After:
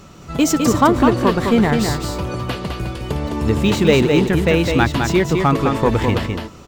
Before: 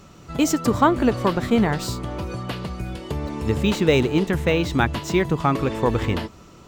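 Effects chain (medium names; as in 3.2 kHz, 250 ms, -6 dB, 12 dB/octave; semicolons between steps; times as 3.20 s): in parallel at -8 dB: hard clipper -19.5 dBFS, distortion -7 dB; on the sum: delay 208 ms -5 dB; trim +2 dB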